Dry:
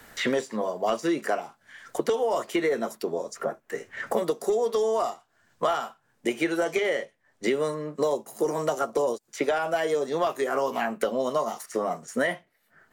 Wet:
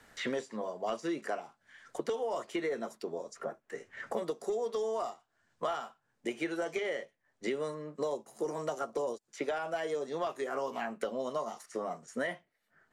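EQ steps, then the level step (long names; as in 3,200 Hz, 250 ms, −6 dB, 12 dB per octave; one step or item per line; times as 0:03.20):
low-pass filter 9,200 Hz 12 dB per octave
−9.0 dB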